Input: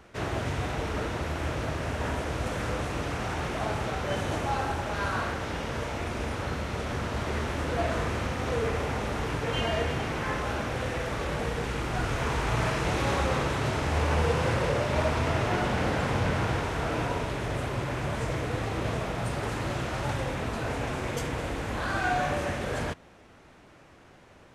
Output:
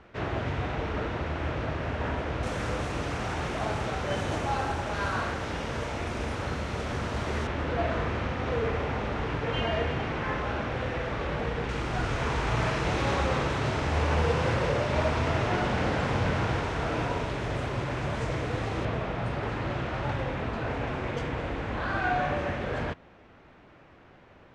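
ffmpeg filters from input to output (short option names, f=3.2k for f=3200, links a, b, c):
-af "asetnsamples=n=441:p=0,asendcmd='2.43 lowpass f 8700;7.47 lowpass f 3700;11.69 lowpass f 6400;18.85 lowpass f 3300',lowpass=3.5k"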